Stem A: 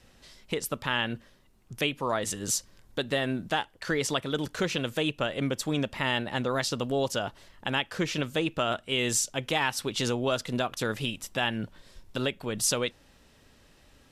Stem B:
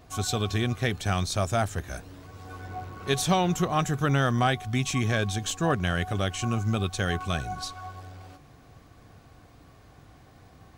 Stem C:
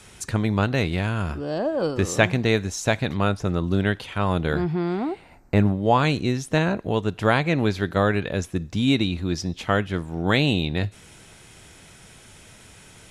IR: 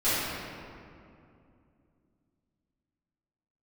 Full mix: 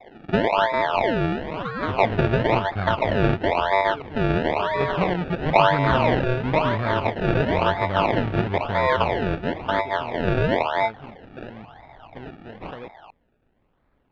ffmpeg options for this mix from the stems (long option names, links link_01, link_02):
-filter_complex "[0:a]volume=-8.5dB[link_01];[1:a]adelay=1700,volume=-0.5dB[link_02];[2:a]aemphasis=mode=reproduction:type=riaa,aeval=exprs='val(0)*sin(2*PI*780*n/s)':channel_layout=same,volume=-5dB[link_03];[link_01][link_02][link_03]amix=inputs=3:normalize=0,acrusher=samples=29:mix=1:aa=0.000001:lfo=1:lforange=29:lforate=0.99,lowpass=frequency=3100:width=0.5412,lowpass=frequency=3100:width=1.3066"